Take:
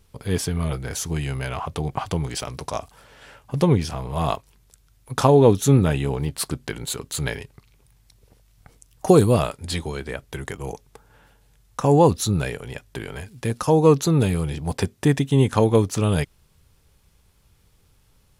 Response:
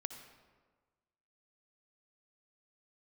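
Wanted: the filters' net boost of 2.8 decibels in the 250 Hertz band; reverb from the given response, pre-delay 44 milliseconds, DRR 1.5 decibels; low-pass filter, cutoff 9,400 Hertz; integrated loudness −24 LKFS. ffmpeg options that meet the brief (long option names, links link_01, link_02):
-filter_complex "[0:a]lowpass=9400,equalizer=frequency=250:width_type=o:gain=4,asplit=2[link_01][link_02];[1:a]atrim=start_sample=2205,adelay=44[link_03];[link_02][link_03]afir=irnorm=-1:irlink=0,volume=0.5dB[link_04];[link_01][link_04]amix=inputs=2:normalize=0,volume=-6dB"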